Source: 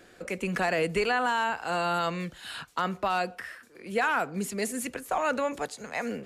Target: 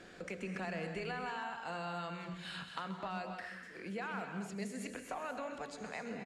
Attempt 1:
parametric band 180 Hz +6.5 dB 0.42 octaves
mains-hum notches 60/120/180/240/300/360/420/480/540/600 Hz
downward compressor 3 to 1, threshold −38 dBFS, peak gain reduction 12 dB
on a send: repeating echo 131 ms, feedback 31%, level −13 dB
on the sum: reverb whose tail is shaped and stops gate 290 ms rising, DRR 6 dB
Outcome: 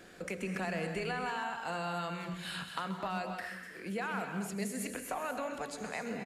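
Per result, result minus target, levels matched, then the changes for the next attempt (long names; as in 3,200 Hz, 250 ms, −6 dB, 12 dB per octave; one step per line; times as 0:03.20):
8,000 Hz band +4.5 dB; downward compressor: peak gain reduction −4.5 dB
add first: low-pass filter 6,900 Hz 12 dB per octave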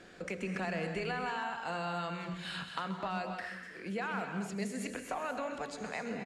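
downward compressor: peak gain reduction −4.5 dB
change: downward compressor 3 to 1, threshold −44.5 dBFS, peak gain reduction 16 dB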